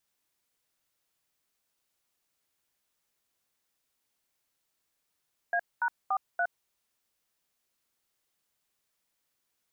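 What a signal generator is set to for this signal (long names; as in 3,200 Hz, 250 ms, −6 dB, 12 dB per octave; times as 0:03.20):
touch tones "A#43", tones 65 ms, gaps 222 ms, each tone −27.5 dBFS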